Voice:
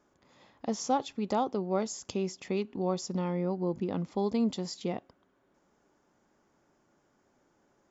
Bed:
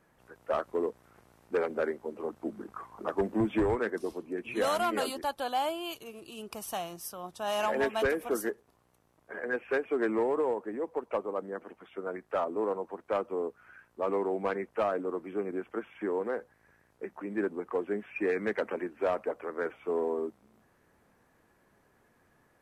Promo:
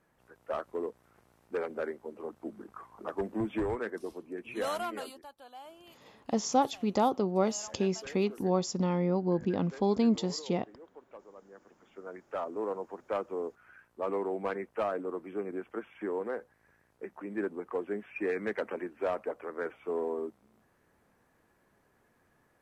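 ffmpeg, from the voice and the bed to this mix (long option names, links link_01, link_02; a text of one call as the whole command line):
ffmpeg -i stem1.wav -i stem2.wav -filter_complex "[0:a]adelay=5650,volume=2.5dB[link_01];[1:a]volume=11.5dB,afade=type=out:start_time=4.71:duration=0.58:silence=0.199526,afade=type=in:start_time=11.43:duration=1.38:silence=0.158489[link_02];[link_01][link_02]amix=inputs=2:normalize=0" out.wav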